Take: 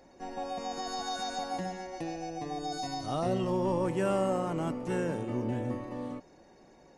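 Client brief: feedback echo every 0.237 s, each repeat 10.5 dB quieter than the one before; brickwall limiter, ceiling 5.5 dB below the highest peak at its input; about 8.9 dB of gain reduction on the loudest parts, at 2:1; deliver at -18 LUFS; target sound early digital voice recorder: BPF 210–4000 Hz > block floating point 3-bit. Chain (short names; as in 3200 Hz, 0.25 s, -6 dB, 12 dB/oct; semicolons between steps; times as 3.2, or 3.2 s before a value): compressor 2:1, threshold -42 dBFS; limiter -32 dBFS; BPF 210–4000 Hz; feedback echo 0.237 s, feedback 30%, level -10.5 dB; block floating point 3-bit; gain +24 dB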